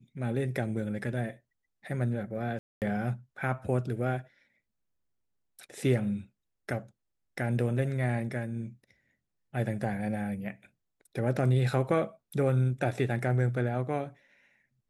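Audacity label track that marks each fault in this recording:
2.590000	2.820000	drop-out 228 ms

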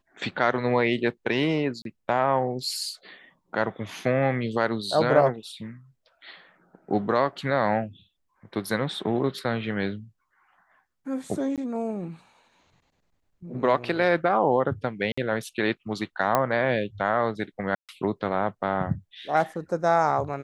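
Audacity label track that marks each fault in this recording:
1.820000	1.850000	drop-out 32 ms
11.560000	11.580000	drop-out 17 ms
15.120000	15.180000	drop-out 55 ms
16.350000	16.350000	click −8 dBFS
17.750000	17.890000	drop-out 137 ms

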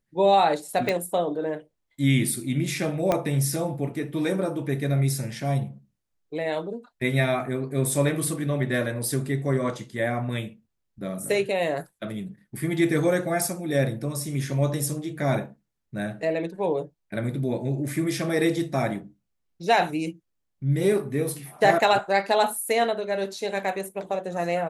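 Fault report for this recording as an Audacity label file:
0.890000	0.890000	click −12 dBFS
3.120000	3.120000	click −10 dBFS

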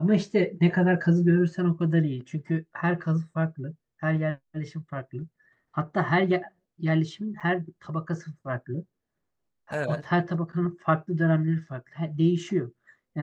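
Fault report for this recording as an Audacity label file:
7.400000	7.410000	drop-out 6.9 ms

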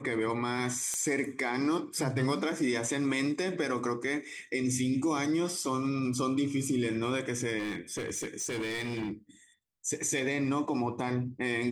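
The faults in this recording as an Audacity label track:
0.940000	0.940000	click −19 dBFS
7.580000	9.120000	clipping −30.5 dBFS

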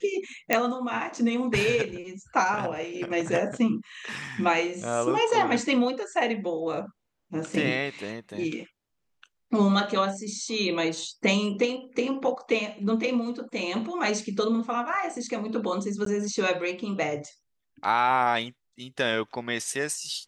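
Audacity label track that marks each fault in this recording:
0.530000	0.530000	click −6 dBFS
16.050000	16.060000	drop-out 13 ms

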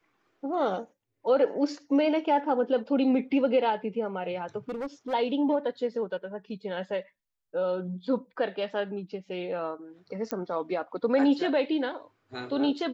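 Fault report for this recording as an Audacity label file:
4.690000	5.140000	clipping −30 dBFS
10.310000	10.310000	click −16 dBFS

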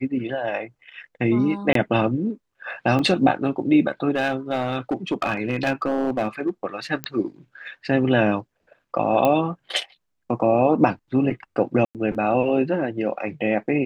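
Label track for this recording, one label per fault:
1.730000	1.750000	drop-out 23 ms
2.990000	2.990000	drop-out 2.4 ms
4.160000	6.490000	clipping −16.5 dBFS
7.040000	7.040000	click −10 dBFS
9.250000	9.250000	click −8 dBFS
11.850000	11.950000	drop-out 98 ms

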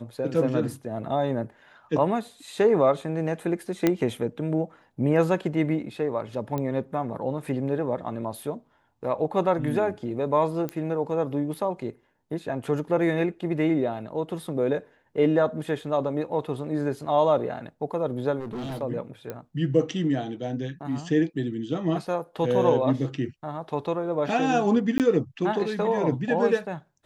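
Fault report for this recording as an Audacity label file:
3.870000	3.870000	click −8 dBFS
6.580000	6.580000	click −17 dBFS
10.690000	10.690000	click −17 dBFS
18.390000	18.820000	clipping −30 dBFS
19.300000	19.300000	click −20 dBFS
24.980000	25.000000	drop-out 18 ms

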